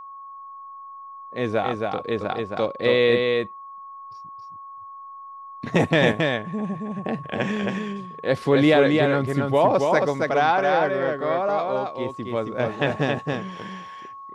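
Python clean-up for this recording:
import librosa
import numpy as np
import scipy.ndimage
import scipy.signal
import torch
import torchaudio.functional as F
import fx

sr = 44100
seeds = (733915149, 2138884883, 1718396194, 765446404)

y = fx.notch(x, sr, hz=1100.0, q=30.0)
y = fx.fix_echo_inverse(y, sr, delay_ms=272, level_db=-3.5)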